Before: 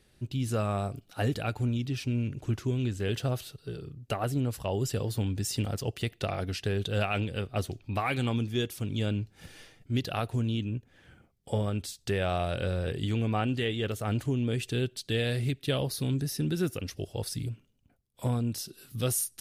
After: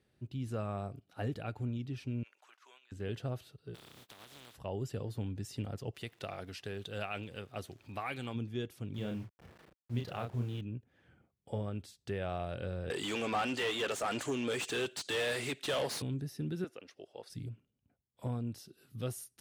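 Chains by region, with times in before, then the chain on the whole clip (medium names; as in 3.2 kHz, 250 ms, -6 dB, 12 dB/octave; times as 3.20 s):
2.23–2.92 s: high-pass 870 Hz 24 dB/octave + compressor with a negative ratio -51 dBFS, ratio -0.5
3.74–4.54 s: spectral contrast reduction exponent 0.21 + peaking EQ 3.5 kHz +9 dB 0.42 oct + compression 10:1, threshold -38 dBFS
5.93–8.34 s: tilt EQ +2 dB/octave + upward compressor, threshold -36 dBFS + crackle 480 per s -44 dBFS
8.94–10.61 s: send-on-delta sampling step -43 dBFS + peaking EQ 280 Hz -6 dB 0.29 oct + doubling 33 ms -4 dB
12.90–16.02 s: high-pass 490 Hz 6 dB/octave + peaking EQ 7.4 kHz +11.5 dB 0.85 oct + overdrive pedal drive 27 dB, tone 7.5 kHz, clips at -15.5 dBFS
16.64–17.30 s: high-pass 450 Hz + distance through air 53 m
whole clip: high-pass 72 Hz; treble shelf 3.2 kHz -10.5 dB; trim -7.5 dB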